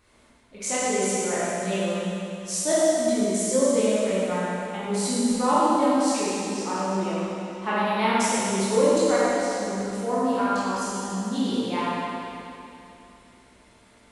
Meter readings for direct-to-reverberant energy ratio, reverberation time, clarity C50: -10.5 dB, 2.9 s, -5.5 dB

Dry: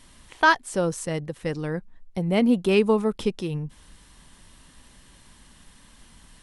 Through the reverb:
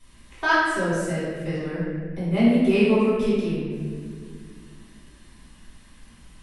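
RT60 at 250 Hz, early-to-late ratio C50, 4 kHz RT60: 3.1 s, -2.5 dB, 1.2 s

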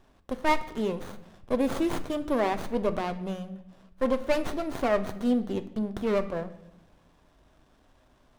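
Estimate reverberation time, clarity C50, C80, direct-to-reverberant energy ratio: 0.85 s, 14.5 dB, 16.5 dB, 9.5 dB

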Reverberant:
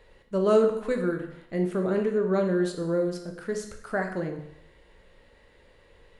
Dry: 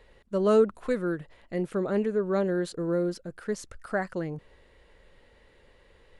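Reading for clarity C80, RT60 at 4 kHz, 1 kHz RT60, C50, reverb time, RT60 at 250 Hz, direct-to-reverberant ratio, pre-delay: 10.5 dB, 0.70 s, 0.75 s, 8.0 dB, 0.75 s, 0.75 s, 3.0 dB, 7 ms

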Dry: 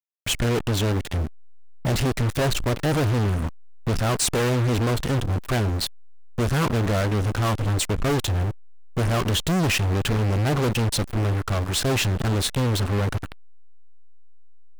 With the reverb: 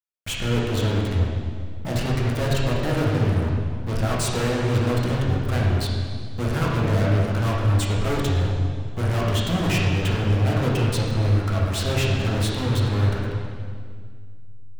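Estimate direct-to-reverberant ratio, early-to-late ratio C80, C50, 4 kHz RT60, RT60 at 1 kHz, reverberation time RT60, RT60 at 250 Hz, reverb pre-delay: -4.5 dB, 1.5 dB, -0.5 dB, 1.8 s, 1.8 s, 2.0 s, 2.4 s, 5 ms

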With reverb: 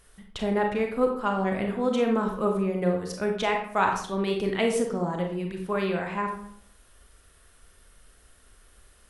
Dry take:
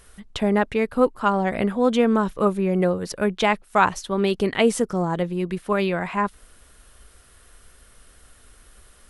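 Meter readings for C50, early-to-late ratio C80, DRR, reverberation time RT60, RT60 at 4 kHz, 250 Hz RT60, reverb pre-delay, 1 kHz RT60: 5.5 dB, 9.0 dB, 2.0 dB, 0.65 s, 0.40 s, 0.70 s, 30 ms, 0.60 s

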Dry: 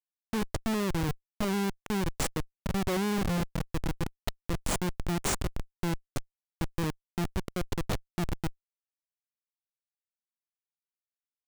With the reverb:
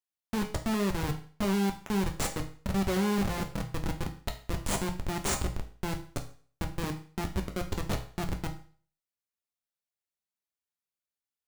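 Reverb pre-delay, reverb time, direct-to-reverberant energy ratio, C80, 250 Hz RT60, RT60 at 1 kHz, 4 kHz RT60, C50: 6 ms, 0.45 s, 3.5 dB, 15.5 dB, 0.40 s, 0.45 s, 0.45 s, 11.5 dB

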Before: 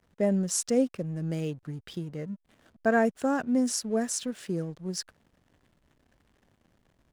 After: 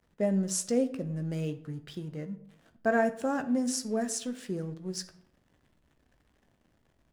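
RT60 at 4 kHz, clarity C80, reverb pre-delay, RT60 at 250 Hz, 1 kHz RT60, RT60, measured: 0.45 s, 17.5 dB, 13 ms, 0.80 s, 0.60 s, 0.70 s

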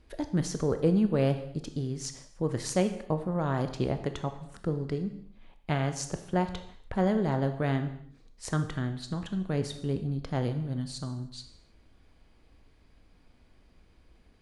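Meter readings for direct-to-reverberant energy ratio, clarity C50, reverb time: 8.0 dB, 10.5 dB, no single decay rate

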